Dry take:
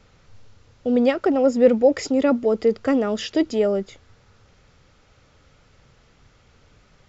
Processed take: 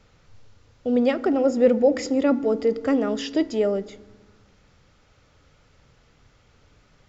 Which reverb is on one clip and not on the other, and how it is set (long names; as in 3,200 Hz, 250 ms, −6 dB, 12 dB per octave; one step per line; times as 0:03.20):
feedback delay network reverb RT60 1.3 s, low-frequency decay 1.5×, high-frequency decay 0.4×, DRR 14.5 dB
level −2.5 dB